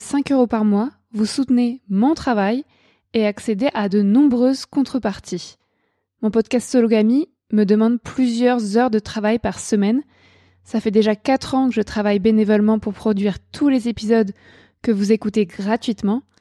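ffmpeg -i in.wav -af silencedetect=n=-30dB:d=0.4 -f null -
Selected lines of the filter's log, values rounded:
silence_start: 2.61
silence_end: 3.14 | silence_duration: 0.53
silence_start: 5.49
silence_end: 6.23 | silence_duration: 0.74
silence_start: 10.01
silence_end: 10.74 | silence_duration: 0.73
silence_start: 14.31
silence_end: 14.84 | silence_duration: 0.53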